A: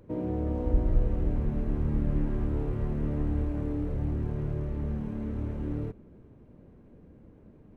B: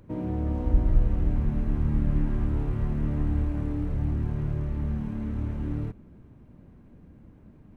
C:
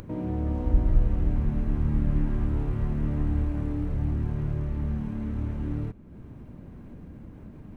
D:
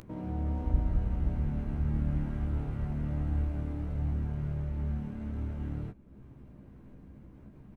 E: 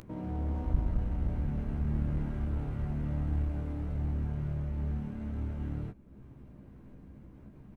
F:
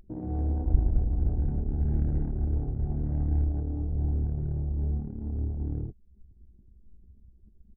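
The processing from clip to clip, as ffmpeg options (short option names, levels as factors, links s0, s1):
-af "equalizer=f=460:w=1.5:g=-8.5,volume=1.5"
-af "acompressor=mode=upward:threshold=0.02:ratio=2.5"
-filter_complex "[0:a]asplit=2[s0][s1];[s1]aeval=exprs='sgn(val(0))*max(abs(val(0))-0.0158,0)':c=same,volume=0.447[s2];[s0][s2]amix=inputs=2:normalize=0,asplit=2[s3][s4];[s4]adelay=15,volume=0.531[s5];[s3][s5]amix=inputs=2:normalize=0,volume=0.376"
-af "aeval=exprs='clip(val(0),-1,0.0355)':c=same"
-af "asuperstop=centerf=1100:order=4:qfactor=2.5,anlmdn=1.58,aecho=1:1:2.6:0.38,volume=1.58"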